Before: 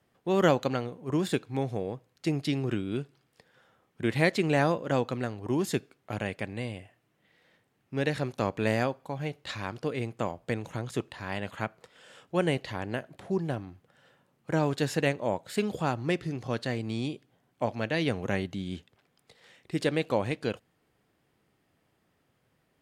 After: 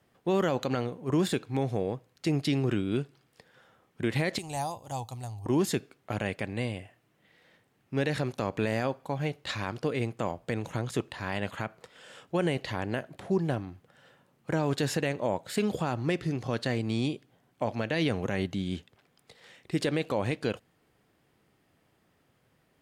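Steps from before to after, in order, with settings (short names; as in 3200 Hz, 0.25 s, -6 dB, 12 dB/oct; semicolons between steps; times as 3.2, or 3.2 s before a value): 4.38–5.46 EQ curve 110 Hz 0 dB, 160 Hz -17 dB, 510 Hz -21 dB, 810 Hz -2 dB, 1500 Hz -24 dB, 9000 Hz +7 dB; limiter -20 dBFS, peak gain reduction 11 dB; gain +3 dB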